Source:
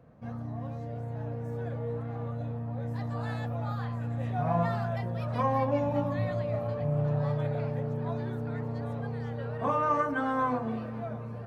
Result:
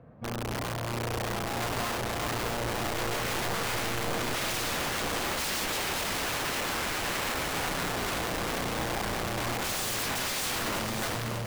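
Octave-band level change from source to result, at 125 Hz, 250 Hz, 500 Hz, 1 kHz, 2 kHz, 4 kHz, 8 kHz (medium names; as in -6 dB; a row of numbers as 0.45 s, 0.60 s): -7.0 dB, -2.5 dB, -2.0 dB, +0.5 dB, +10.5 dB, +23.0 dB, no reading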